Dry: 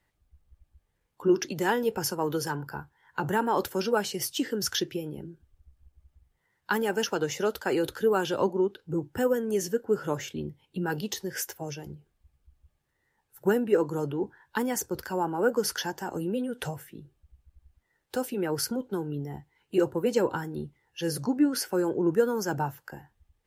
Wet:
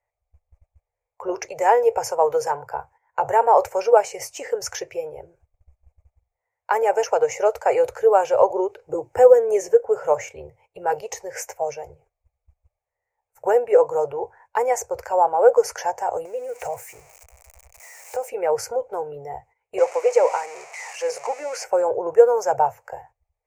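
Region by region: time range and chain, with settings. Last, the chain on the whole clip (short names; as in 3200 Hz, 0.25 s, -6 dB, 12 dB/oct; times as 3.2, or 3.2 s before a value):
8.5–9.85 bell 320 Hz +10 dB 0.64 oct + three-band squash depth 40%
16.25–18.29 switching spikes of -32.5 dBFS + compressor 4:1, threshold -33 dBFS
19.78–21.64 switching spikes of -21.5 dBFS + BPF 460–5600 Hz
whole clip: gate -55 dBFS, range -14 dB; EQ curve 110 Hz 0 dB, 200 Hz -29 dB, 320 Hz -18 dB, 470 Hz +9 dB, 680 Hz +15 dB, 1600 Hz -4 dB, 2300 Hz +8 dB, 3400 Hz -19 dB, 6800 Hz +3 dB, 11000 Hz -10 dB; gain +2.5 dB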